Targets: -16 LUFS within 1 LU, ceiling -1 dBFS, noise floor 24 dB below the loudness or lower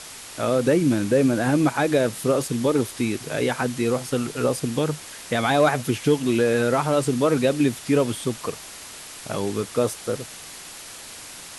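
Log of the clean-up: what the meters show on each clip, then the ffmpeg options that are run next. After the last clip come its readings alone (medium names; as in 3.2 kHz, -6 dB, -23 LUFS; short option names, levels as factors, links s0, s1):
noise floor -40 dBFS; noise floor target -47 dBFS; loudness -22.5 LUFS; peak level -7.0 dBFS; loudness target -16.0 LUFS
-> -af "afftdn=nr=7:nf=-40"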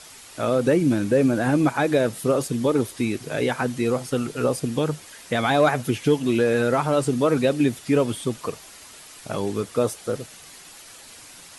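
noise floor -45 dBFS; noise floor target -47 dBFS
-> -af "afftdn=nr=6:nf=-45"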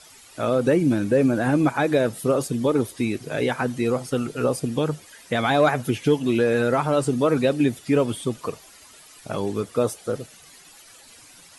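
noise floor -49 dBFS; loudness -23.0 LUFS; peak level -7.0 dBFS; loudness target -16.0 LUFS
-> -af "volume=2.24,alimiter=limit=0.891:level=0:latency=1"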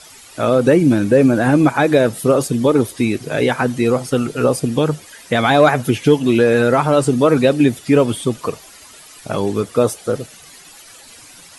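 loudness -16.0 LUFS; peak level -1.0 dBFS; noise floor -42 dBFS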